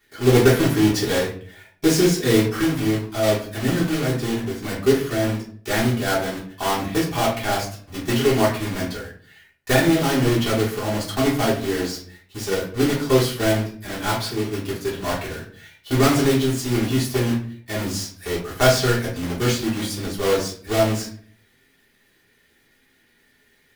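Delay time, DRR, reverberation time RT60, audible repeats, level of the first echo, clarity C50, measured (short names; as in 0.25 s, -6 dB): none, -6.5 dB, 0.50 s, none, none, 6.5 dB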